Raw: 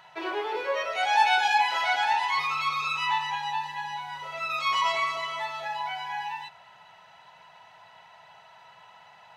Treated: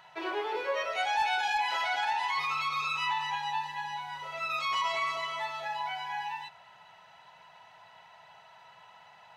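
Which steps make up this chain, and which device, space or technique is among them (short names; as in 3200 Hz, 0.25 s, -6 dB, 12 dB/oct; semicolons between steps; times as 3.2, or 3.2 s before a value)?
clipper into limiter (hard clip -14.5 dBFS, distortion -28 dB; limiter -19.5 dBFS, peak gain reduction 5 dB); gain -2.5 dB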